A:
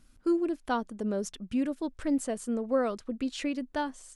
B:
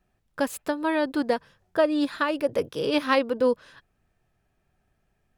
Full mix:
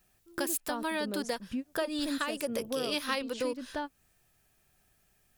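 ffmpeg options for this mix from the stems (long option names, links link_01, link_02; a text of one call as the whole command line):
ffmpeg -i stem1.wav -i stem2.wav -filter_complex "[0:a]volume=0.5dB[link_01];[1:a]crystalizer=i=6:c=0,volume=-2.5dB,asplit=2[link_02][link_03];[link_03]apad=whole_len=183204[link_04];[link_01][link_04]sidechaingate=range=-33dB:threshold=-53dB:ratio=16:detection=peak[link_05];[link_05][link_02]amix=inputs=2:normalize=0,acompressor=threshold=-34dB:ratio=2.5" out.wav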